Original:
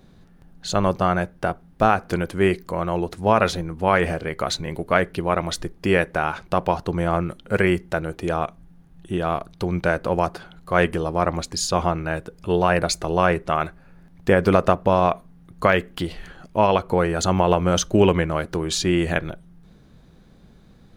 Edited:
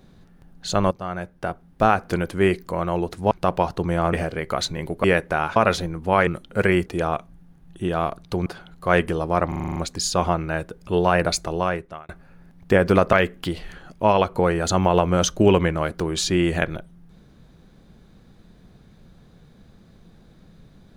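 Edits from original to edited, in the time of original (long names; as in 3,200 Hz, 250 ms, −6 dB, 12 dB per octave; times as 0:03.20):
0:00.91–0:01.89: fade in, from −15 dB
0:03.31–0:04.02: swap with 0:06.40–0:07.22
0:04.93–0:05.88: remove
0:07.81–0:08.15: remove
0:09.75–0:10.31: remove
0:11.33: stutter 0.04 s, 8 plays
0:12.92–0:13.66: fade out
0:14.70–0:15.67: remove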